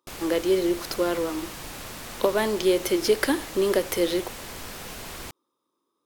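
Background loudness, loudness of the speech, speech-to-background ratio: −37.0 LKFS, −25.0 LKFS, 12.0 dB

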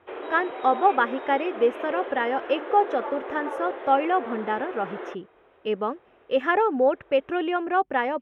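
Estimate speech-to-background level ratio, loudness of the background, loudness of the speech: 9.5 dB, −34.5 LKFS, −25.0 LKFS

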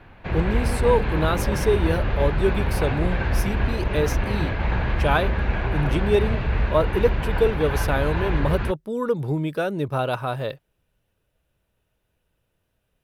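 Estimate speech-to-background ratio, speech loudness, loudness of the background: 0.0 dB, −25.5 LKFS, −25.5 LKFS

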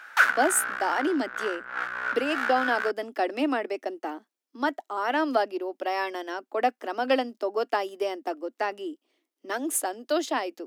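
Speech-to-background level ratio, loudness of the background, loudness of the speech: 0.5 dB, −29.0 LKFS, −28.5 LKFS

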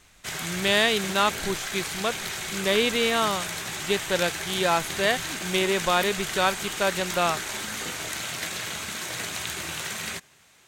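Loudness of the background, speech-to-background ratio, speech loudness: −30.5 LKFS, 5.0 dB, −25.5 LKFS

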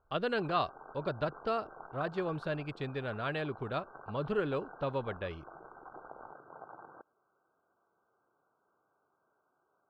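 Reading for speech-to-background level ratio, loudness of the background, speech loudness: 15.0 dB, −51.0 LKFS, −36.0 LKFS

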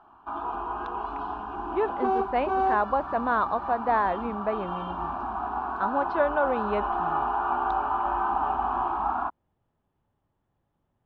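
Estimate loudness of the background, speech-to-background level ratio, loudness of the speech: −29.5 LKFS, 1.5 dB, −28.0 LKFS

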